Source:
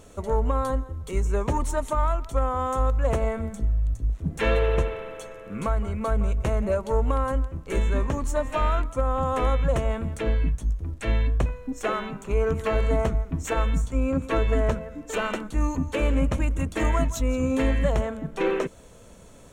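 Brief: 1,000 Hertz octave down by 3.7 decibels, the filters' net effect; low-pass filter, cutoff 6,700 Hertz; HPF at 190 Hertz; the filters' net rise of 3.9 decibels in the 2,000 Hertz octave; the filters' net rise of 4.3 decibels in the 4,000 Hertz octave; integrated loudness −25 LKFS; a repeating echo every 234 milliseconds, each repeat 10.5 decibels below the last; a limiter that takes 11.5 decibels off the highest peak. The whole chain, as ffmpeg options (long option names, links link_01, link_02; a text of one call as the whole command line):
ffmpeg -i in.wav -af "highpass=190,lowpass=6700,equalizer=frequency=1000:width_type=o:gain=-7,equalizer=frequency=2000:width_type=o:gain=6,equalizer=frequency=4000:width_type=o:gain=4,alimiter=limit=-23.5dB:level=0:latency=1,aecho=1:1:234|468|702:0.299|0.0896|0.0269,volume=8dB" out.wav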